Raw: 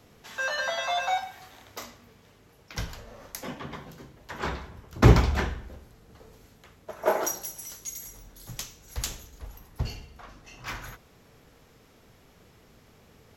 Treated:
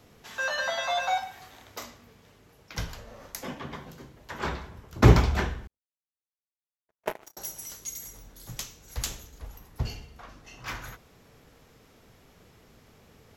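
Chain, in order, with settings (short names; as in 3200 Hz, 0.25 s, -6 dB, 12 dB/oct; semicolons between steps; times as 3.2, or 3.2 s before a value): 5.67–7.37 power-law curve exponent 3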